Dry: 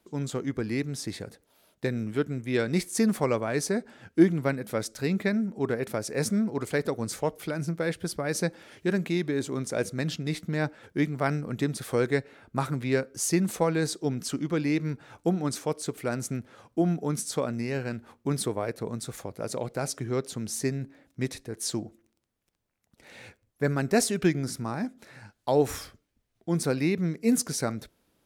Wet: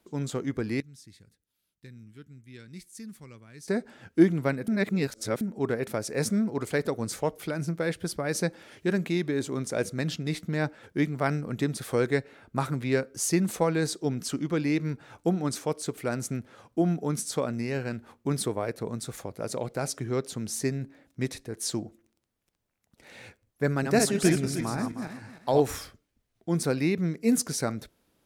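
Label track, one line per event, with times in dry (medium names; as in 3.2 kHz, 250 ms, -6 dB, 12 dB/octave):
0.800000	3.680000	amplifier tone stack bass-middle-treble 6-0-2
4.680000	5.410000	reverse
23.680000	25.700000	backward echo that repeats 155 ms, feedback 43%, level -4.5 dB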